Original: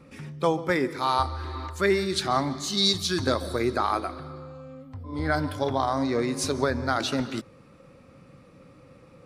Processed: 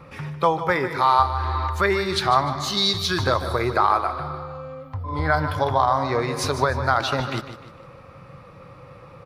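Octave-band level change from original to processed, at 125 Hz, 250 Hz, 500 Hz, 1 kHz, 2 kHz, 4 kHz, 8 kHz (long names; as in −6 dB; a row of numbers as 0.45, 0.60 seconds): +6.0, −1.5, +2.5, +8.0, +5.5, +2.5, −0.5 decibels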